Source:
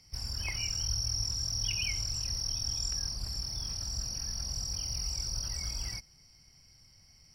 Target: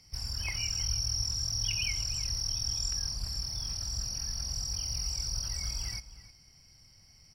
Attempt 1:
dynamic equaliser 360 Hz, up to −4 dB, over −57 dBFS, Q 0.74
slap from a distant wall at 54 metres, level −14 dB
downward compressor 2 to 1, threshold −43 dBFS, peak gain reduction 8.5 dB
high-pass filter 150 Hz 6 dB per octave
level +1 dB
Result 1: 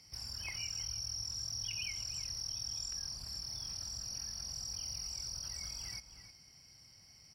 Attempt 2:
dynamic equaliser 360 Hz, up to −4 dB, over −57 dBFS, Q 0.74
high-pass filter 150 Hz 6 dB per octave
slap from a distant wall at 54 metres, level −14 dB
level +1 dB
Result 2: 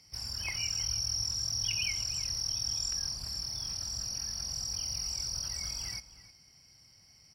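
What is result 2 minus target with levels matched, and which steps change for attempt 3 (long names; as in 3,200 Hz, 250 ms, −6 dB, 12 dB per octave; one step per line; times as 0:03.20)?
125 Hz band −6.0 dB
remove: high-pass filter 150 Hz 6 dB per octave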